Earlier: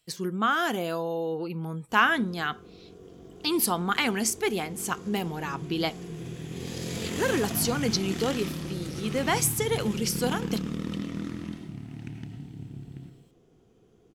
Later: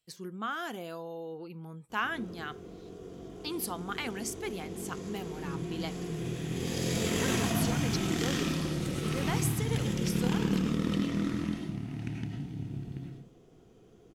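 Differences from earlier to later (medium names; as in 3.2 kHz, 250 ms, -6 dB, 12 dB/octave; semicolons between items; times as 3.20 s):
speech -10.5 dB; background: send +7.0 dB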